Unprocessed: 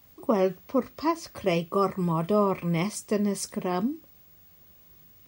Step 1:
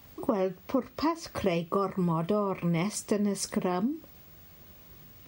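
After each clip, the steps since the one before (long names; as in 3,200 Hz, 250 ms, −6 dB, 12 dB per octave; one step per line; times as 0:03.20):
high-shelf EQ 6,200 Hz −6 dB
downward compressor 6 to 1, threshold −32 dBFS, peak gain reduction 14 dB
level +7 dB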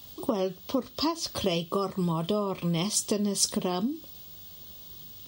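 high shelf with overshoot 2,700 Hz +7.5 dB, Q 3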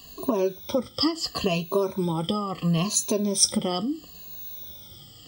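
rippled gain that drifts along the octave scale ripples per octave 1.5, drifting −0.74 Hz, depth 18 dB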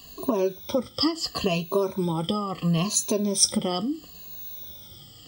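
surface crackle 47 per second −44 dBFS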